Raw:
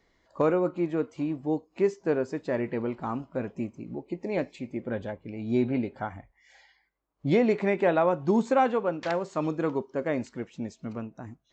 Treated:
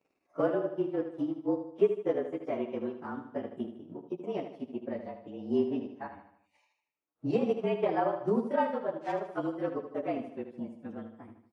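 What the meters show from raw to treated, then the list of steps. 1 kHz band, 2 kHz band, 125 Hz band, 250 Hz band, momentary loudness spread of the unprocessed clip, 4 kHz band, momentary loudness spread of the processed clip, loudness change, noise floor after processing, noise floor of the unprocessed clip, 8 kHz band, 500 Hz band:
−5.0 dB, −8.5 dB, −9.0 dB, −5.0 dB, 14 LU, −5.5 dB, 14 LU, −4.5 dB, −80 dBFS, −71 dBFS, can't be measured, −3.5 dB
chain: partials spread apart or drawn together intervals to 110%
spectral tilt −2.5 dB per octave
transient designer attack +6 dB, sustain −10 dB
high-pass filter 290 Hz 12 dB per octave
on a send: repeating echo 77 ms, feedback 48%, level −9 dB
on the sum: level −6 dB

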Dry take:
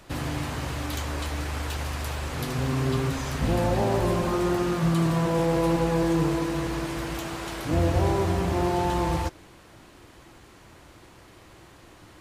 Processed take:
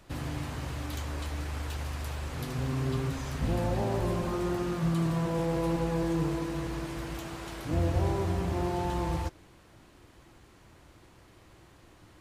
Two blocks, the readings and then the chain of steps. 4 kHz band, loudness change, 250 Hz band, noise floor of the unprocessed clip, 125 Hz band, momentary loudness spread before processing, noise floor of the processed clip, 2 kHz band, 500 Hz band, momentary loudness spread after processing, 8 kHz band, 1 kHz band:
−7.5 dB, −5.5 dB, −5.5 dB, −51 dBFS, −4.0 dB, 8 LU, −57 dBFS, −7.5 dB, −6.5 dB, 8 LU, −7.5 dB, −7.0 dB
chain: low-shelf EQ 210 Hz +4.5 dB
level −7.5 dB

